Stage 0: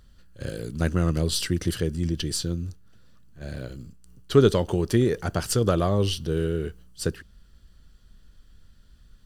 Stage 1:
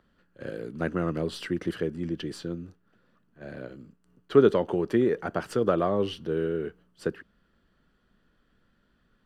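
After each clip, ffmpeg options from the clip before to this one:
-filter_complex "[0:a]acrossover=split=180 2600:gain=0.1 1 0.112[a][b][c];[a][b][c]amix=inputs=3:normalize=0"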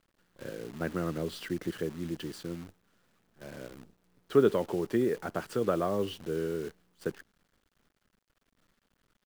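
-af "acrusher=bits=8:dc=4:mix=0:aa=0.000001,volume=-4.5dB"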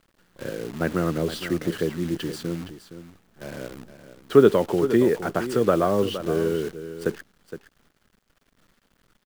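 -af "aecho=1:1:466:0.251,volume=8.5dB"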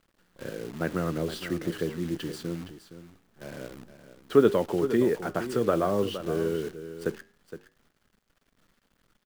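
-af "flanger=delay=3.7:depth=8.4:regen=-86:speed=0.22:shape=sinusoidal"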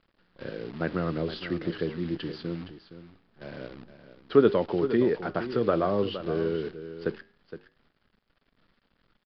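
-af "aresample=11025,aresample=44100"

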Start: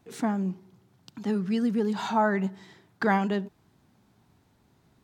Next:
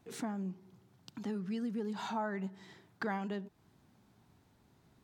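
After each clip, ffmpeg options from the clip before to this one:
-af "acompressor=threshold=-38dB:ratio=2,volume=-3dB"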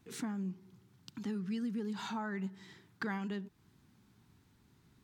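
-af "equalizer=f=640:t=o:w=0.99:g=-11,volume=1.5dB"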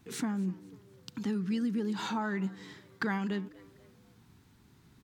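-filter_complex "[0:a]asplit=4[a][b][c][d];[b]adelay=247,afreqshift=98,volume=-22dB[e];[c]adelay=494,afreqshift=196,volume=-30.2dB[f];[d]adelay=741,afreqshift=294,volume=-38.4dB[g];[a][e][f][g]amix=inputs=4:normalize=0,volume=5.5dB"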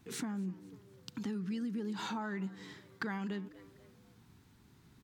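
-af "acompressor=threshold=-35dB:ratio=2.5,volume=-1.5dB"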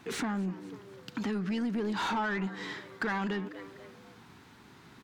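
-filter_complex "[0:a]asplit=2[a][b];[b]highpass=f=720:p=1,volume=21dB,asoftclip=type=tanh:threshold=-24dB[c];[a][c]amix=inputs=2:normalize=0,lowpass=f=2.1k:p=1,volume=-6dB,volume=2dB"

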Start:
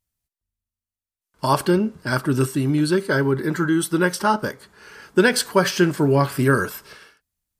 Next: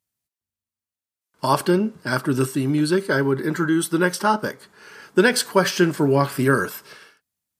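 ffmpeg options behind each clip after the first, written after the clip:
-af "highpass=130"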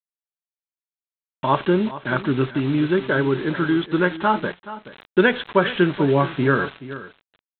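-af "aresample=8000,acrusher=bits=5:mix=0:aa=0.000001,aresample=44100,aecho=1:1:427:0.178"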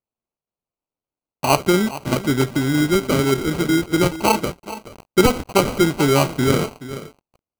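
-af "acrusher=samples=25:mix=1:aa=0.000001,volume=2dB"

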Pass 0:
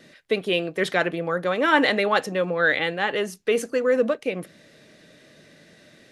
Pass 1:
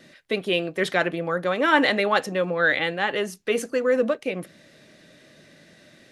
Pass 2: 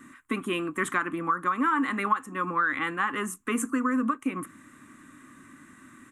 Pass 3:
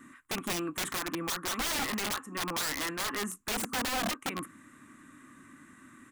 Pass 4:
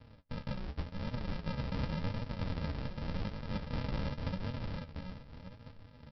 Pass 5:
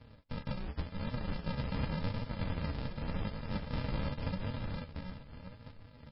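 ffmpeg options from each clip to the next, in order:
-af "bandreject=f=450:w=12"
-af "firequalizer=gain_entry='entry(110,0);entry(170,-8);entry(260,9);entry(420,-12);entry(620,-20);entry(1100,14);entry(1600,0);entry(4700,-22);entry(7500,6);entry(12000,1)':delay=0.05:min_phase=1,acompressor=threshold=-24dB:ratio=6,volume=1.5dB"
-af "aeval=exprs='(mod(15.8*val(0)+1,2)-1)/15.8':c=same,volume=-3dB"
-af "aecho=1:1:698|1396|2094|2792:0.708|0.177|0.0442|0.0111,aresample=11025,acrusher=samples=30:mix=1:aa=0.000001,aresample=44100,flanger=delay=7.8:depth=8.1:regen=47:speed=0.88:shape=triangular,volume=1dB"
-af "volume=1dB" -ar 12000 -c:a libmp3lame -b:a 16k

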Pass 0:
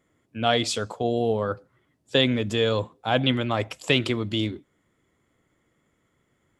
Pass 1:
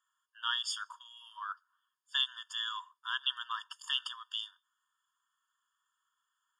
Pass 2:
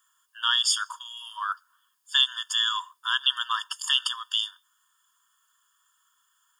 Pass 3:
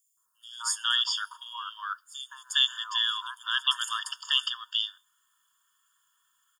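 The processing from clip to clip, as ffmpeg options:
-af "afftfilt=real='re*eq(mod(floor(b*sr/1024/910),2),1)':imag='im*eq(mod(floor(b*sr/1024/910),2),1)':win_size=1024:overlap=0.75,volume=-5.5dB"
-filter_complex "[0:a]highshelf=f=5.1k:g=11.5,asplit=2[a][b];[b]alimiter=level_in=1dB:limit=-24dB:level=0:latency=1:release=92,volume=-1dB,volume=-0.5dB[c];[a][c]amix=inputs=2:normalize=0,volume=4dB"
-filter_complex "[0:a]acrossover=split=1100|5500[a][b][c];[a]adelay=170[d];[b]adelay=410[e];[d][e][c]amix=inputs=3:normalize=0,volume=-1dB"

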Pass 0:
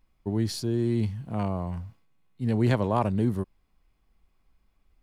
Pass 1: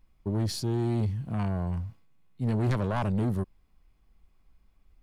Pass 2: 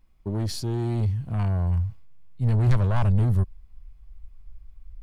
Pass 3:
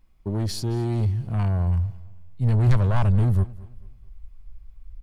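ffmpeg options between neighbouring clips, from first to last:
-af "volume=21dB,asoftclip=hard,volume=-21dB,lowshelf=f=200:g=5,asoftclip=type=tanh:threshold=-22dB"
-af "asubboost=boost=9.5:cutoff=90,volume=1dB"
-af "aecho=1:1:219|438|657:0.1|0.034|0.0116,volume=1.5dB"

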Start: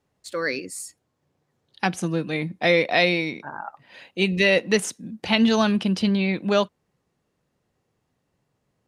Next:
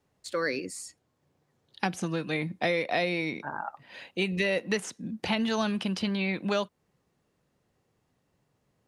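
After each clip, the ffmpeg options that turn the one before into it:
-filter_complex "[0:a]acrossover=split=720|2200|7700[a][b][c][d];[a]acompressor=threshold=-29dB:ratio=4[e];[b]acompressor=threshold=-33dB:ratio=4[f];[c]acompressor=threshold=-38dB:ratio=4[g];[d]acompressor=threshold=-52dB:ratio=4[h];[e][f][g][h]amix=inputs=4:normalize=0"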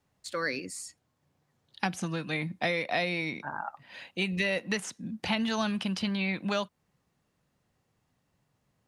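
-af "equalizer=f=410:w=1.4:g=-6"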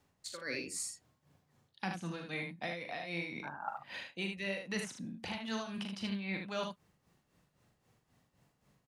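-af "areverse,acompressor=threshold=-40dB:ratio=5,areverse,tremolo=f=3.8:d=0.75,aecho=1:1:41|76:0.447|0.531,volume=4dB"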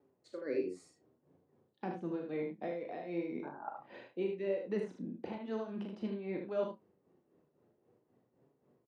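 -filter_complex "[0:a]flanger=delay=7.1:depth=5.9:regen=73:speed=0.47:shape=triangular,bandpass=f=380:t=q:w=2.5:csg=0,asplit=2[a][b];[b]adelay=33,volume=-10dB[c];[a][c]amix=inputs=2:normalize=0,volume=14.5dB"

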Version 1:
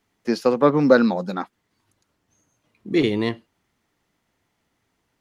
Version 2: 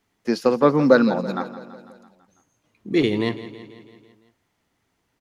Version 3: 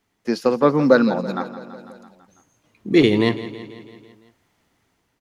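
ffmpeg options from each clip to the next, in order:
-af "aecho=1:1:166|332|498|664|830|996:0.188|0.113|0.0678|0.0407|0.0244|0.0146"
-af "dynaudnorm=f=270:g=5:m=6dB"

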